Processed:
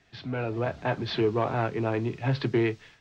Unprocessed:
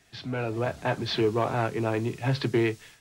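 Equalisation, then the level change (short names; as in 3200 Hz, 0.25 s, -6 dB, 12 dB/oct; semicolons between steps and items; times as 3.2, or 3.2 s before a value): air absorption 200 m; high shelf 6600 Hz +9.5 dB; 0.0 dB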